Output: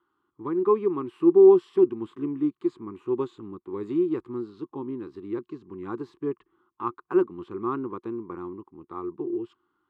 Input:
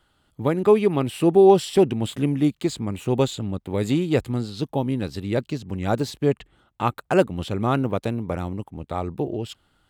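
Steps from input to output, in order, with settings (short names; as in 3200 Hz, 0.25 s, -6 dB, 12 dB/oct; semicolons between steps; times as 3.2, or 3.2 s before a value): harmonic-percussive split harmonic +5 dB; double band-pass 620 Hz, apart 1.6 oct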